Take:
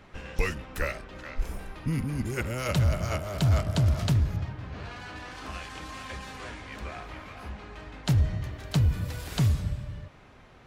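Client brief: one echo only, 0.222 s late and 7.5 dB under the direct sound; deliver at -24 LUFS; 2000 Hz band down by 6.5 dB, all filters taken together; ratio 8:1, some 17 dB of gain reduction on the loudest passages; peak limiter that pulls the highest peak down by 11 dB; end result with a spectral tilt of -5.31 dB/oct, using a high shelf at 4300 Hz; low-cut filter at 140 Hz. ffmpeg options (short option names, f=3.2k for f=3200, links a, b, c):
-af "highpass=140,equalizer=f=2k:t=o:g=-6.5,highshelf=f=4.3k:g=-8,acompressor=threshold=-41dB:ratio=8,alimiter=level_in=13dB:limit=-24dB:level=0:latency=1,volume=-13dB,aecho=1:1:222:0.422,volume=22dB"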